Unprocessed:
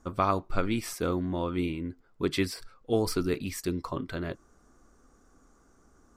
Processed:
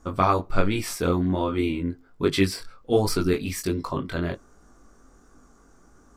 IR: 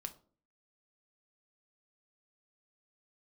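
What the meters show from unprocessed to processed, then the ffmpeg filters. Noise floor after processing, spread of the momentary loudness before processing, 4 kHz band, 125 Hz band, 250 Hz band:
-56 dBFS, 9 LU, +6.0 dB, +6.5 dB, +5.5 dB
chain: -filter_complex "[0:a]flanger=delay=19.5:depth=3.6:speed=1.3,asplit=2[s0][s1];[1:a]atrim=start_sample=2205,asetrate=57330,aresample=44100[s2];[s1][s2]afir=irnorm=-1:irlink=0,volume=0.316[s3];[s0][s3]amix=inputs=2:normalize=0,volume=2.37"

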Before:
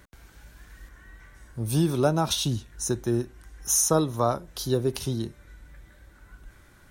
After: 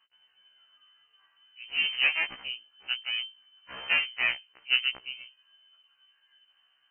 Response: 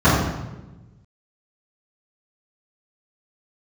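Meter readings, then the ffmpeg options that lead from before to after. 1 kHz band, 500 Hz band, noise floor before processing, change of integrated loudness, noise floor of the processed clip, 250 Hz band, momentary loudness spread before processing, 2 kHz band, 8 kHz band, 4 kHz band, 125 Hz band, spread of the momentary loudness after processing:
-13.5 dB, -25.0 dB, -55 dBFS, -2.0 dB, -70 dBFS, -31.0 dB, 13 LU, +15.5 dB, under -40 dB, +5.5 dB, under -35 dB, 16 LU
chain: -af "aeval=exprs='0.335*(cos(1*acos(clip(val(0)/0.335,-1,1)))-cos(1*PI/2))+0.0133*(cos(4*acos(clip(val(0)/0.335,-1,1)))-cos(4*PI/2))+0.0596*(cos(7*acos(clip(val(0)/0.335,-1,1)))-cos(7*PI/2))':c=same,lowpass=f=2600:t=q:w=0.5098,lowpass=f=2600:t=q:w=0.6013,lowpass=f=2600:t=q:w=0.9,lowpass=f=2600:t=q:w=2.563,afreqshift=-3100,afftfilt=real='re*1.73*eq(mod(b,3),0)':imag='im*1.73*eq(mod(b,3),0)':win_size=2048:overlap=0.75"

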